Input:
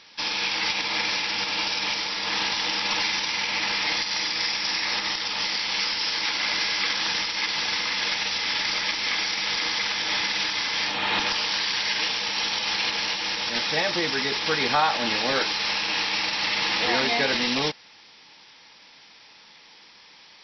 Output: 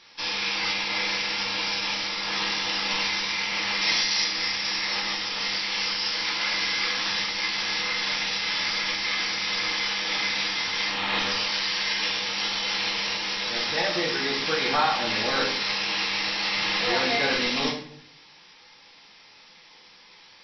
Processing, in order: 3.81–4.24 high shelf 5200 Hz +11.5 dB; flutter echo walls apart 11.8 m, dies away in 0.29 s; reverb RT60 0.60 s, pre-delay 6 ms, DRR -1 dB; gain -4.5 dB

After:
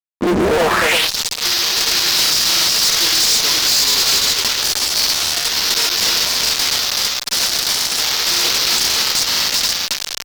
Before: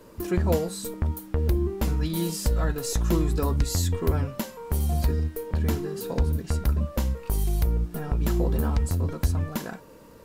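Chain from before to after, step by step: tracing distortion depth 0.034 ms; high shelf 6500 Hz -5.5 dB; bit-crush 5-bit; low shelf 130 Hz -10 dB; echo 0.38 s -3.5 dB; grains; band-pass sweep 270 Hz -> 4900 Hz, 0.36–1.1; fuzz box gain 51 dB, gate -58 dBFS; core saturation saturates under 200 Hz; gain +1.5 dB

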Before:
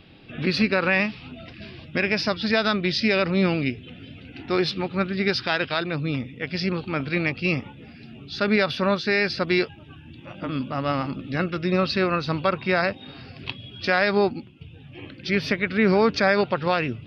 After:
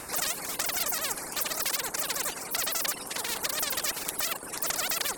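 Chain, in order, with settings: rotary speaker horn 1 Hz, later 7 Hz, at 7.02; wide varispeed 3.3×; spectral compressor 4:1

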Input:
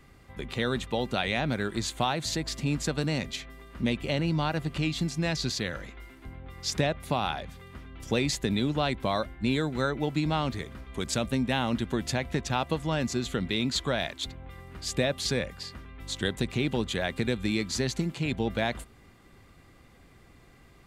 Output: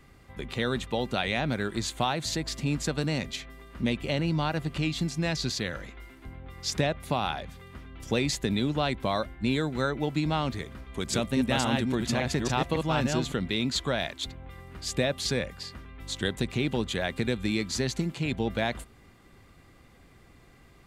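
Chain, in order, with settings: 10.81–13.32 reverse delay 0.279 s, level -2.5 dB

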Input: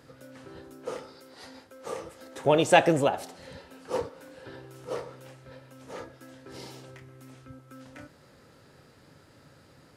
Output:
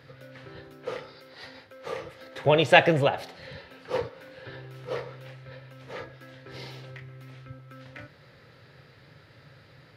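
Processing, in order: graphic EQ 125/250/500/2000/4000/8000 Hz +10/-4/+4/+9/+8/-11 dB; gain -2.5 dB

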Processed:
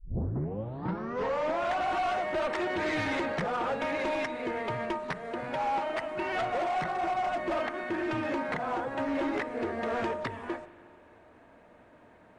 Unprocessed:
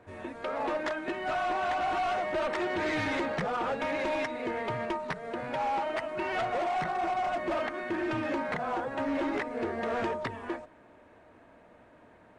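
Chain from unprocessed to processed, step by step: tape start at the beginning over 1.74 s; spring tank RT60 2.1 s, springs 40 ms, chirp 55 ms, DRR 14 dB

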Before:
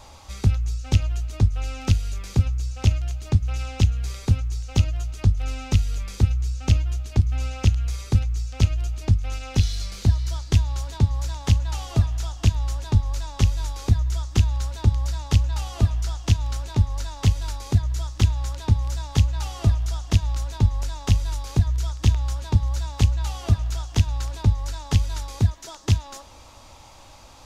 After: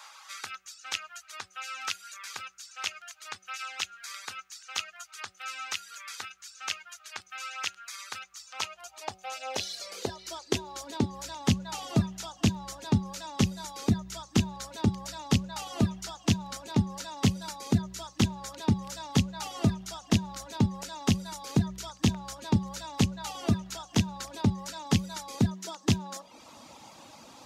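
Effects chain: high-pass sweep 1400 Hz -> 200 Hz, 8.12–11.48; reverb removal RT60 0.72 s; de-hum 188.4 Hz, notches 4

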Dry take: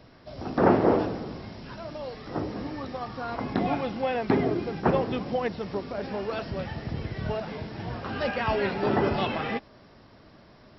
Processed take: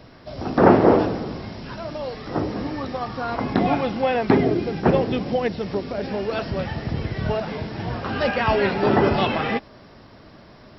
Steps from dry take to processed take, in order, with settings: 4.37–6.35 dynamic EQ 1100 Hz, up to -6 dB, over -43 dBFS, Q 1.4; gain +6.5 dB

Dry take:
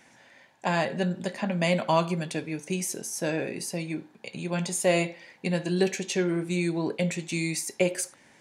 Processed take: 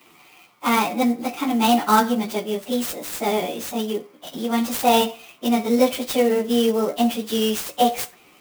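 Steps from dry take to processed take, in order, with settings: pitch shift by moving bins +5 st; clock jitter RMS 0.027 ms; gain +9 dB

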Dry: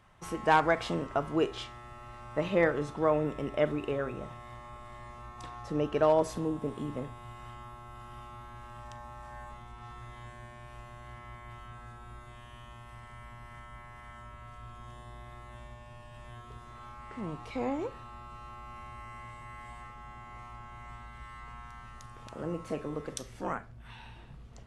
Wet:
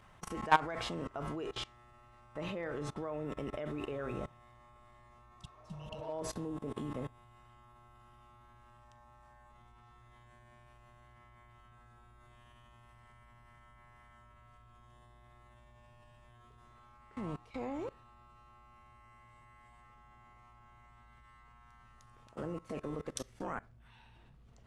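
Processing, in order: level quantiser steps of 21 dB; spectral repair 5.4–6.08, 220–2600 Hz both; gain +3 dB

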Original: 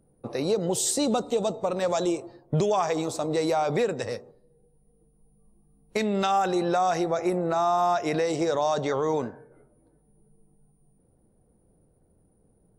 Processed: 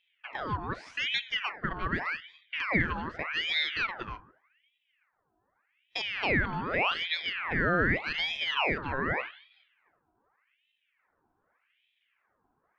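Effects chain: speaker cabinet 280–2600 Hz, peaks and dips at 390 Hz -7 dB, 630 Hz -7 dB, 1000 Hz +9 dB, 1500 Hz -8 dB; ring modulator with a swept carrier 1700 Hz, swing 70%, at 0.84 Hz

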